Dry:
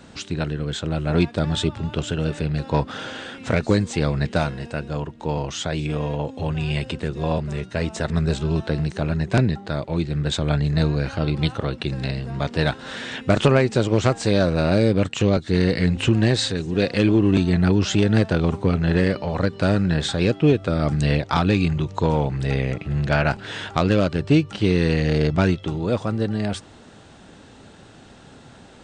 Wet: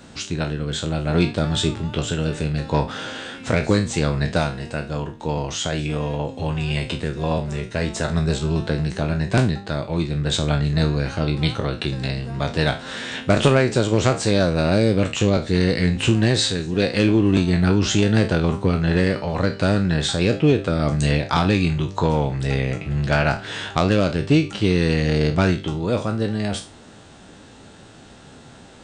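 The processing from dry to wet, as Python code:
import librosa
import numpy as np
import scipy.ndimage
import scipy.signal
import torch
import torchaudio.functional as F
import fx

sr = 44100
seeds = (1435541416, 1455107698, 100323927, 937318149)

y = fx.spec_trails(x, sr, decay_s=0.31)
y = fx.high_shelf(y, sr, hz=6100.0, db=5.0)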